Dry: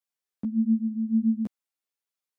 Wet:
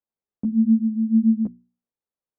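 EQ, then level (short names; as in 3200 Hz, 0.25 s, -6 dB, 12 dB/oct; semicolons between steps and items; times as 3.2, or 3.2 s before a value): Bessel low-pass 580 Hz, order 2; notches 60/120/180/240/300/360 Hz; +6.5 dB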